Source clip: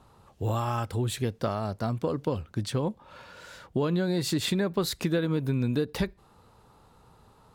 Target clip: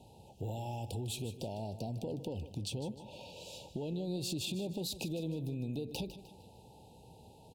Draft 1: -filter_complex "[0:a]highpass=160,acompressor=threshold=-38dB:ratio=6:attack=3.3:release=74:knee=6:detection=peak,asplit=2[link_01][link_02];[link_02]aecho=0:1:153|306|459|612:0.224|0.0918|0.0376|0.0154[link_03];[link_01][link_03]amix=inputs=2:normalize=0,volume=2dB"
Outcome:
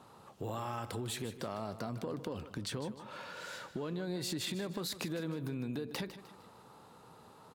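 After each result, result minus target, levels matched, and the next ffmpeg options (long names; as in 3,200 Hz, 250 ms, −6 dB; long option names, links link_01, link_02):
2,000 Hz band +7.5 dB; 125 Hz band −3.0 dB
-filter_complex "[0:a]highpass=160,acompressor=threshold=-38dB:ratio=6:attack=3.3:release=74:knee=6:detection=peak,asuperstop=centerf=1500:order=20:qfactor=0.96,asplit=2[link_01][link_02];[link_02]aecho=0:1:153|306|459|612:0.224|0.0918|0.0376|0.0154[link_03];[link_01][link_03]amix=inputs=2:normalize=0,volume=2dB"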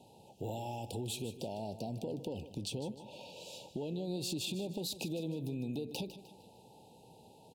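125 Hz band −2.5 dB
-filter_complex "[0:a]highpass=63,acompressor=threshold=-38dB:ratio=6:attack=3.3:release=74:knee=6:detection=peak,asuperstop=centerf=1500:order=20:qfactor=0.96,asplit=2[link_01][link_02];[link_02]aecho=0:1:153|306|459|612:0.224|0.0918|0.0376|0.0154[link_03];[link_01][link_03]amix=inputs=2:normalize=0,volume=2dB"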